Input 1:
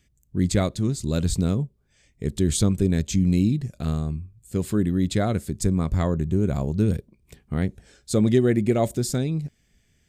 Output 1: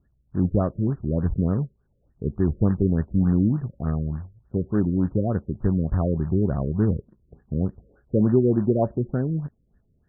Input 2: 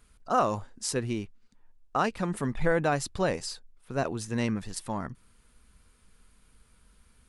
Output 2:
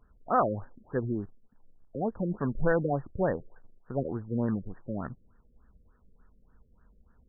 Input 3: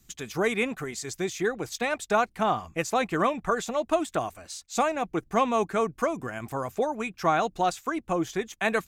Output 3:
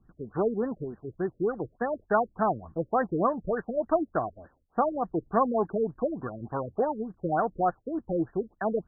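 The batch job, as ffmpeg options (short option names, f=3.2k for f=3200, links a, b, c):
-af "acrusher=bits=4:mode=log:mix=0:aa=0.000001,afftfilt=real='re*lt(b*sr/1024,560*pow(1900/560,0.5+0.5*sin(2*PI*3.4*pts/sr)))':imag='im*lt(b*sr/1024,560*pow(1900/560,0.5+0.5*sin(2*PI*3.4*pts/sr)))':win_size=1024:overlap=0.75"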